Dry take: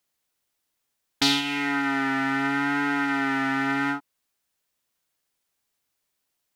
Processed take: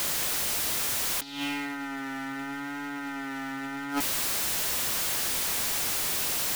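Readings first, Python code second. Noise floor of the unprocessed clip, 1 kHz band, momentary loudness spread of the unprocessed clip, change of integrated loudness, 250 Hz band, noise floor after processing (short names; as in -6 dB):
-79 dBFS, -7.0 dB, 3 LU, -3.5 dB, -8.0 dB, -36 dBFS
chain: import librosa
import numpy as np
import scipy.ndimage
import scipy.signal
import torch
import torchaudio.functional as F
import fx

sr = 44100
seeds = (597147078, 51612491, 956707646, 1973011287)

y = x + 0.5 * 10.0 ** (-25.0 / 20.0) * np.sign(x)
y = fx.over_compress(y, sr, threshold_db=-27.0, ratio=-0.5)
y = y * 10.0 ** (-1.5 / 20.0)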